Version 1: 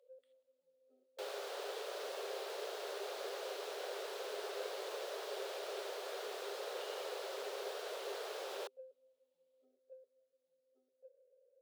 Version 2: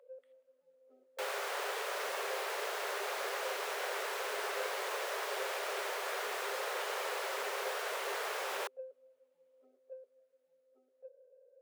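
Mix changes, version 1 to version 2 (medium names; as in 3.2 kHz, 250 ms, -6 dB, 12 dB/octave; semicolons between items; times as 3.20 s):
first sound +5.5 dB; second sound: add treble shelf 2.5 kHz +10.5 dB; master: add graphic EQ 1/2/4 kHz +8/+9/-6 dB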